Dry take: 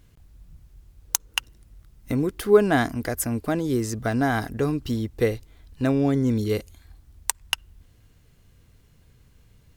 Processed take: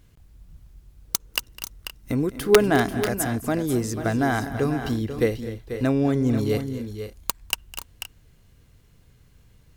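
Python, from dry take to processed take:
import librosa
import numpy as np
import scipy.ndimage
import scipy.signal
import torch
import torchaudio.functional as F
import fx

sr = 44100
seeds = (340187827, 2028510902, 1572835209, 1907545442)

y = (np.mod(10.0 ** (5.0 / 20.0) * x + 1.0, 2.0) - 1.0) / 10.0 ** (5.0 / 20.0)
y = fx.echo_multitap(y, sr, ms=(207, 243, 490, 520), db=(-19.0, -15.0, -10.0, -17.5))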